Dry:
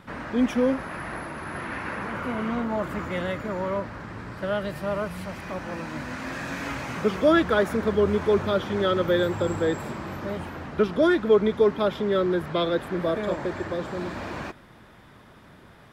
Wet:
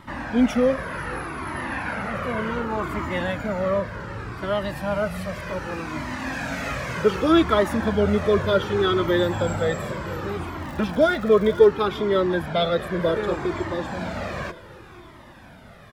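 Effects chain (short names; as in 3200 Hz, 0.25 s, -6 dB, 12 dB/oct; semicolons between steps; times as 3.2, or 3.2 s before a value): 10.59–11.67 crackle 180/s -37 dBFS; feedback echo 0.492 s, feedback 57%, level -19.5 dB; cascading flanger falling 0.66 Hz; gain +8 dB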